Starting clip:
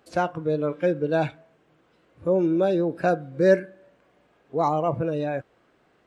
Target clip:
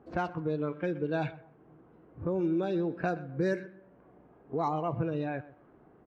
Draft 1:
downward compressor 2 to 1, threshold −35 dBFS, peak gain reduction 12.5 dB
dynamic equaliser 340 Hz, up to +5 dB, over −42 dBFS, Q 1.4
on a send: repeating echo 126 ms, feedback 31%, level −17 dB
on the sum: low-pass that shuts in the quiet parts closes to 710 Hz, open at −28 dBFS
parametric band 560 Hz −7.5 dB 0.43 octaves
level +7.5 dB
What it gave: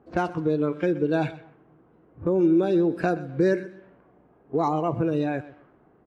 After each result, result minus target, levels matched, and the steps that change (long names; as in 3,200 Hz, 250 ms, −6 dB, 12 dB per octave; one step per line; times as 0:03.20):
downward compressor: peak gain reduction −5 dB; 125 Hz band −3.0 dB
change: downward compressor 2 to 1, threshold −45 dBFS, peak gain reduction 17.5 dB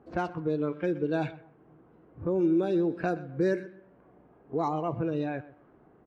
125 Hz band −2.5 dB
change: dynamic equaliser 120 Hz, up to +5 dB, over −42 dBFS, Q 1.4